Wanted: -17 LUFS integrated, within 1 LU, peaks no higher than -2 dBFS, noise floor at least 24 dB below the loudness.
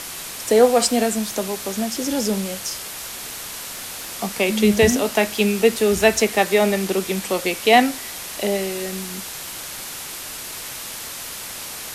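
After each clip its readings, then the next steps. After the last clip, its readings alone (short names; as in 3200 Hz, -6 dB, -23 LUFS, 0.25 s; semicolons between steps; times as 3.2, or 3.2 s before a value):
noise floor -33 dBFS; noise floor target -45 dBFS; loudness -21.0 LUFS; peak -1.5 dBFS; loudness target -17.0 LUFS
-> denoiser 12 dB, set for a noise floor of -33 dBFS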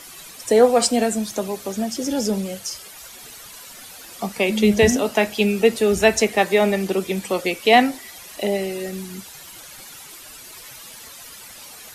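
noise floor -41 dBFS; noise floor target -44 dBFS
-> denoiser 6 dB, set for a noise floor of -41 dBFS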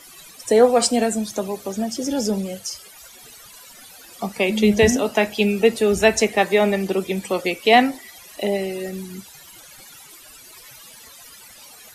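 noise floor -45 dBFS; loudness -20.0 LUFS; peak -1.5 dBFS; loudness target -17.0 LUFS
-> gain +3 dB; limiter -2 dBFS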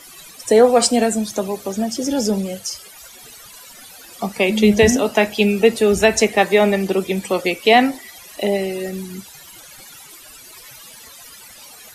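loudness -17.0 LUFS; peak -2.0 dBFS; noise floor -42 dBFS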